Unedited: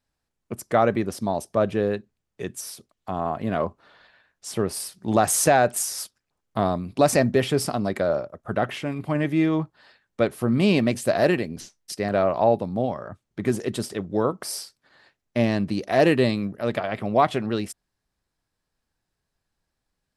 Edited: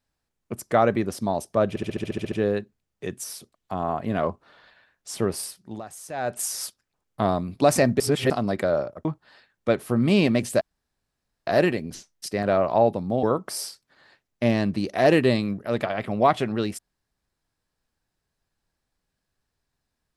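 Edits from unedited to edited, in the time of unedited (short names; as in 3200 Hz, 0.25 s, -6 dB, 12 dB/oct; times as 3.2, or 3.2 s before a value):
1.69 stutter 0.07 s, 10 plays
4.73–5.94 dip -20 dB, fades 0.46 s
7.37–7.67 reverse
8.42–9.57 cut
11.13 insert room tone 0.86 s
12.89–14.17 cut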